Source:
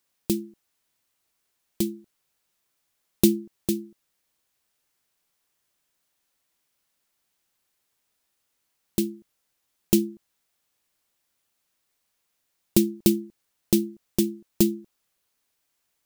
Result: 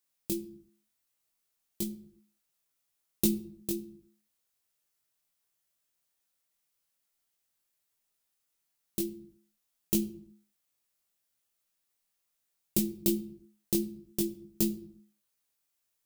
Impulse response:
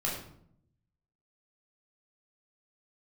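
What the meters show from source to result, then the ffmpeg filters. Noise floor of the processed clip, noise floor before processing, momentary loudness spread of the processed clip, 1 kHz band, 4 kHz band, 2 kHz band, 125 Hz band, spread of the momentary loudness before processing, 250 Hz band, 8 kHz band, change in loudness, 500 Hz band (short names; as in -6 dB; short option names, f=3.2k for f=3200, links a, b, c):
-80 dBFS, -76 dBFS, 17 LU, n/a, -7.0 dB, -8.5 dB, -8.5 dB, 9 LU, -8.5 dB, -5.0 dB, -7.0 dB, -9.0 dB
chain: -filter_complex "[0:a]highshelf=f=6.3k:g=7.5,flanger=delay=18.5:depth=2.2:speed=1.5,asplit=2[a][b];[1:a]atrim=start_sample=2205,afade=t=out:st=0.42:d=0.01,atrim=end_sample=18963[c];[b][c]afir=irnorm=-1:irlink=0,volume=-17dB[d];[a][d]amix=inputs=2:normalize=0,volume=-7.5dB"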